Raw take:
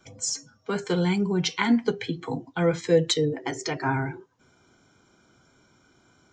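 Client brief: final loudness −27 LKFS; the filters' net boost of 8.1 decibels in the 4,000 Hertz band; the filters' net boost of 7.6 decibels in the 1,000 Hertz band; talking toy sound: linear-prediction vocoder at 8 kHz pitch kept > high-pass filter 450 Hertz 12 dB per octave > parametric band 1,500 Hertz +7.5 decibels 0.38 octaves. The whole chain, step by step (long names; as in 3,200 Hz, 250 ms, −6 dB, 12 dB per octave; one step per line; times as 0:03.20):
parametric band 1,000 Hz +7.5 dB
parametric band 4,000 Hz +9 dB
linear-prediction vocoder at 8 kHz pitch kept
high-pass filter 450 Hz 12 dB per octave
parametric band 1,500 Hz +7.5 dB 0.38 octaves
level −1.5 dB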